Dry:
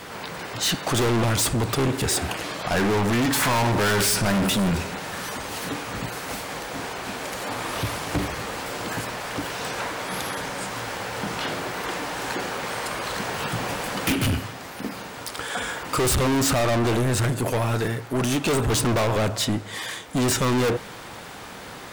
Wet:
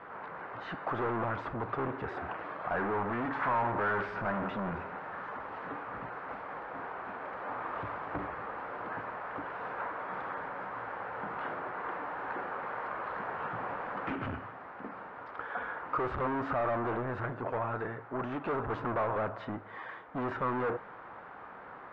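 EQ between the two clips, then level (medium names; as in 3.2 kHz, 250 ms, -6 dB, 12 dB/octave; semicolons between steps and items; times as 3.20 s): four-pole ladder low-pass 1.7 kHz, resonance 30%; bass shelf 330 Hz -11.5 dB; 0.0 dB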